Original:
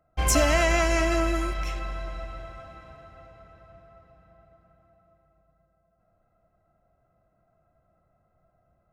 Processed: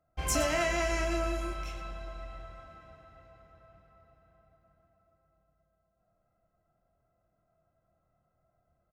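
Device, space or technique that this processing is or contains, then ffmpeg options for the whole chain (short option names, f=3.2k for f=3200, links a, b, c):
slapback doubling: -filter_complex "[0:a]asplit=3[a][b][c];[b]adelay=26,volume=-6dB[d];[c]adelay=118,volume=-11dB[e];[a][d][e]amix=inputs=3:normalize=0,asettb=1/sr,asplit=3[f][g][h];[f]atrim=end=1.044[i];[g]atrim=start=1.04:end=2.2,asetpts=PTS-STARTPTS,afade=t=in:d=0.004:c=qsin,afade=t=out:st=1.156:d=0.004:c=qsin,bandreject=f=1.9k:w=9.2[j];[h]atrim=start=2.196[k];[i][j]acrossfade=d=0.004:c1=hsin:c2=qsin[l];[l][k]acrossfade=d=0.004:c1=qsin:c2=hsin,volume=-8dB"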